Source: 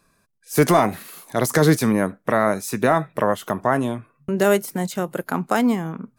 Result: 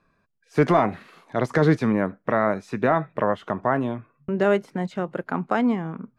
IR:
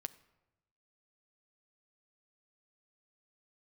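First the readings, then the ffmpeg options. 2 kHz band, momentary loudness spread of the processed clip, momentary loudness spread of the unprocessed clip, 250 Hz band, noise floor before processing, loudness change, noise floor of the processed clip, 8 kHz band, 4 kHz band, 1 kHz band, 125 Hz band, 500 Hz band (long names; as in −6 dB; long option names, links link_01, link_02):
−3.0 dB, 10 LU, 10 LU, −2.5 dB, −65 dBFS, −3.0 dB, −68 dBFS, below −20 dB, −9.0 dB, −2.5 dB, −2.5 dB, −2.5 dB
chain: -af "lowpass=2700,volume=-2.5dB"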